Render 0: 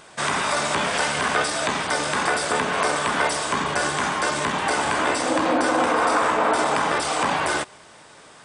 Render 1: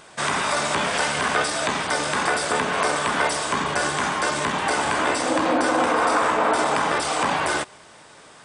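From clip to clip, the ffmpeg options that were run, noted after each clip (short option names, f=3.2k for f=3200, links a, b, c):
-af anull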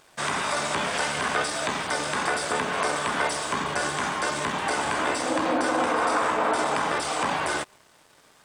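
-af "aeval=exprs='sgn(val(0))*max(abs(val(0))-0.00335,0)':c=same,volume=-3.5dB"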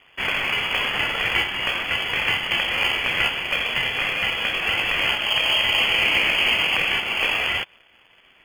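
-filter_complex "[0:a]lowpass=f=3k:t=q:w=0.5098,lowpass=f=3k:t=q:w=0.6013,lowpass=f=3k:t=q:w=0.9,lowpass=f=3k:t=q:w=2.563,afreqshift=-3500,asplit=2[a][b];[b]acrusher=samples=23:mix=1:aa=0.000001,volume=-11dB[c];[a][c]amix=inputs=2:normalize=0,volume=3.5dB"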